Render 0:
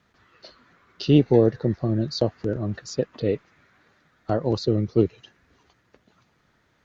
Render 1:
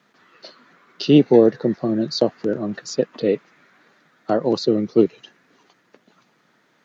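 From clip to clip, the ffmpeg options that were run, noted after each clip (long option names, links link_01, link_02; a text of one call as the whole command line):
ffmpeg -i in.wav -af "highpass=frequency=170:width=0.5412,highpass=frequency=170:width=1.3066,volume=5dB" out.wav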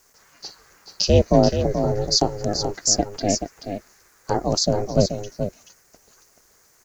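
ffmpeg -i in.wav -af "aeval=exprs='val(0)*sin(2*PI*200*n/s)':channel_layout=same,aexciter=amount=15.6:drive=3:freq=5300,aecho=1:1:431:0.398" out.wav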